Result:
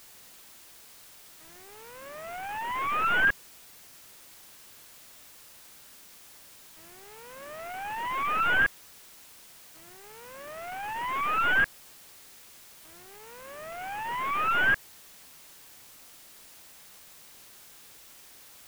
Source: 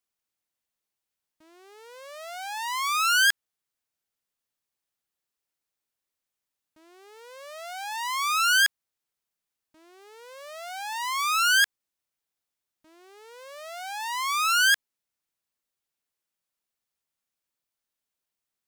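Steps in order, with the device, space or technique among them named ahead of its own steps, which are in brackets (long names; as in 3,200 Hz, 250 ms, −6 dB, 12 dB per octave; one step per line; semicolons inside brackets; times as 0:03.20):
army field radio (band-pass filter 380–2,800 Hz; variable-slope delta modulation 16 kbit/s; white noise bed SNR 18 dB)
level +1 dB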